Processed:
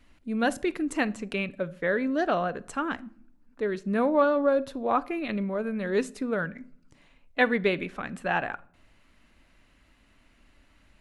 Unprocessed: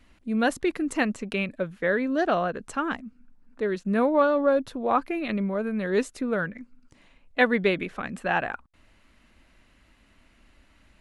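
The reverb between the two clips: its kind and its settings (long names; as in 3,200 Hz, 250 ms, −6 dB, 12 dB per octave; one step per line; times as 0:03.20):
rectangular room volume 840 cubic metres, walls furnished, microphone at 0.34 metres
level −2 dB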